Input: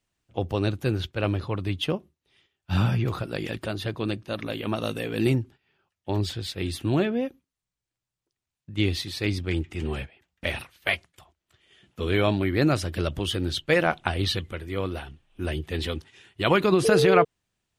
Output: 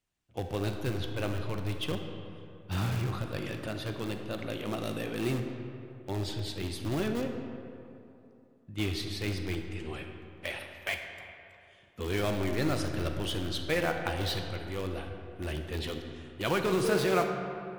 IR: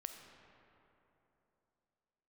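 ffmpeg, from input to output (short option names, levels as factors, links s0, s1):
-filter_complex "[0:a]asettb=1/sr,asplit=3[s0][s1][s2];[s0]atrim=end=9.554[s3];[s1]atrim=start=9.55:end=10.93,asetpts=PTS-STARTPTS,afade=t=in:d=0.004:c=qsin,afade=t=out:st=1.376:d=0.004:c=qsin,lowshelf=f=230:g=-11.5[s4];[s2]atrim=start=10.926[s5];[s3][s4]acrossfade=d=0.004:c1=hsin:c2=qsin[s6];[s6][s5]acrossfade=d=0.004:c1=qsin:c2=hsin,asplit=2[s7][s8];[s8]aeval=exprs='(mod(10.6*val(0)+1,2)-1)/10.6':c=same,volume=0.355[s9];[s7][s9]amix=inputs=2:normalize=0[s10];[1:a]atrim=start_sample=2205,asetrate=52920,aresample=44100[s11];[s10][s11]afir=irnorm=-1:irlink=0,volume=0.75"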